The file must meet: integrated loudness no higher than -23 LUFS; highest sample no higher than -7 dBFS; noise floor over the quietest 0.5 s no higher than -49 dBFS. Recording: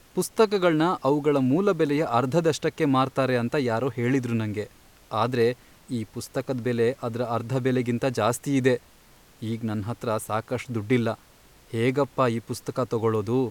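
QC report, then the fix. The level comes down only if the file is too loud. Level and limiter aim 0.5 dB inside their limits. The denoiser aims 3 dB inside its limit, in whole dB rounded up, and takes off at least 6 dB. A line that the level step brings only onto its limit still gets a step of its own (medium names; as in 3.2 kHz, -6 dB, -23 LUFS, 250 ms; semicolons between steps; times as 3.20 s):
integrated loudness -25.5 LUFS: pass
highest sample -8.0 dBFS: pass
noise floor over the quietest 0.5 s -54 dBFS: pass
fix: none needed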